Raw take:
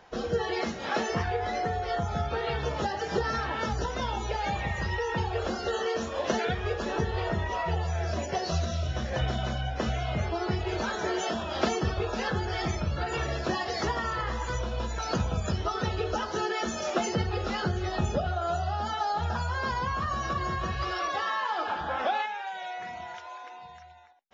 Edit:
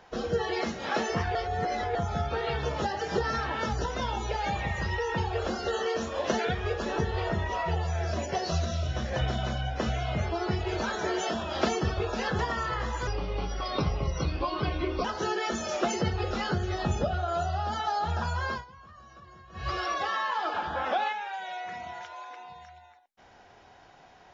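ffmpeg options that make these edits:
-filter_complex "[0:a]asplit=8[s0][s1][s2][s3][s4][s5][s6][s7];[s0]atrim=end=1.352[s8];[s1]atrim=start=1.348:end=1.952,asetpts=PTS-STARTPTS,areverse[s9];[s2]atrim=start=1.948:end=12.392[s10];[s3]atrim=start=13.858:end=14.544[s11];[s4]atrim=start=14.54:end=16.18,asetpts=PTS-STARTPTS,asetrate=36603,aresample=44100,atrim=end_sample=87137,asetpts=PTS-STARTPTS[s12];[s5]atrim=start=16.176:end=19.78,asetpts=PTS-STARTPTS,afade=t=out:st=3.444:d=0.16:silence=0.0944061[s13];[s6]atrim=start=19.78:end=20.66,asetpts=PTS-STARTPTS,volume=0.0944[s14];[s7]atrim=start=20.66,asetpts=PTS-STARTPTS,afade=t=in:d=0.16:silence=0.0944061[s15];[s8][s9]acrossfade=d=0.004:c1=hsin:c2=hsin[s16];[s16][s10]acrossfade=d=0.004:c1=hsin:c2=hsin[s17];[s17][s11]acrossfade=d=0.004:c1=hsin:c2=hsin[s18];[s18][s12]acrossfade=d=0.004:c1=hsin:c2=hsin[s19];[s13][s14][s15]concat=n=3:v=0:a=1[s20];[s19][s20]acrossfade=d=0.004:c1=hsin:c2=hsin"

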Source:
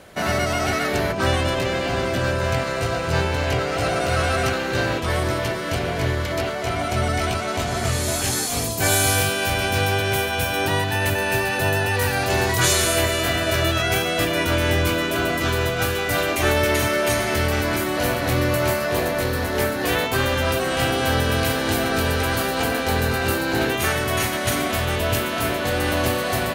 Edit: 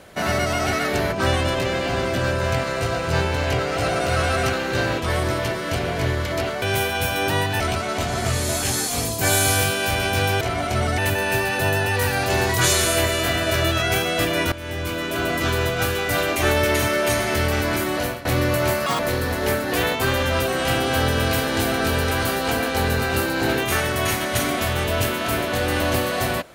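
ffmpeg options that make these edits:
-filter_complex "[0:a]asplit=9[s0][s1][s2][s3][s4][s5][s6][s7][s8];[s0]atrim=end=6.622[s9];[s1]atrim=start=9.998:end=10.982[s10];[s2]atrim=start=7.188:end=10.002[s11];[s3]atrim=start=6.618:end=7.192[s12];[s4]atrim=start=10.978:end=14.52,asetpts=PTS-STARTPTS,afade=t=out:st=3.538:d=0.004:c=hsin:silence=0.141254[s13];[s5]atrim=start=14.52:end=18.25,asetpts=PTS-STARTPTS,afade=t=in:d=0.86:silence=0.141254,afade=t=out:st=3.43:d=0.3:silence=0.141254[s14];[s6]atrim=start=18.25:end=18.864,asetpts=PTS-STARTPTS,afade=t=in:d=0.004:c=hsin:silence=0.141254[s15];[s7]atrim=start=18.86:end=19.11,asetpts=PTS-STARTPTS,asetrate=83790,aresample=44100[s16];[s8]atrim=start=19.106[s17];[s9][s10]acrossfade=d=0.004:c1=hsin:c2=hsin[s18];[s18][s11]acrossfade=d=0.004:c1=hsin:c2=hsin[s19];[s19][s12]acrossfade=d=0.004:c1=hsin:c2=hsin[s20];[s13][s14][s15]concat=n=3:v=0:a=1[s21];[s20][s21]acrossfade=d=0.004:c1=hsin:c2=hsin[s22];[s22][s16]acrossfade=d=0.004:c1=hsin:c2=hsin[s23];[s23][s17]acrossfade=d=0.004:c1=hsin:c2=hsin"

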